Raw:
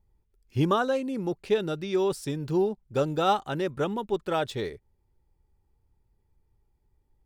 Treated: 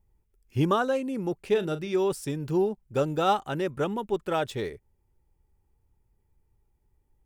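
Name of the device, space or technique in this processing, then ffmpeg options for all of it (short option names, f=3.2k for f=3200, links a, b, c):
exciter from parts: -filter_complex "[0:a]asplit=2[a][b];[b]highpass=2.3k,asoftclip=type=tanh:threshold=-36.5dB,highpass=f=3.1k:w=0.5412,highpass=f=3.1k:w=1.3066,volume=-6dB[c];[a][c]amix=inputs=2:normalize=0,asettb=1/sr,asplit=3[d][e][f];[d]atrim=end=1.504[g];[e]atrim=start=1.5:end=1.94,asetpts=PTS-STARTPTS,afade=t=in:d=0.004:c=qsin,afade=t=out:st=0.436:d=0.004:c=qsin,asplit=2[h][i];[i]adelay=39,volume=-12dB[j];[h][j]amix=inputs=2:normalize=0,atrim=end_sample=19404[k];[f]atrim=start=1.936[l];[g][k]acrossfade=d=0.004:c1=hsin:c2=qsin[m];[m][l]acrossfade=d=0.004:c1=qsin:c2=hsin"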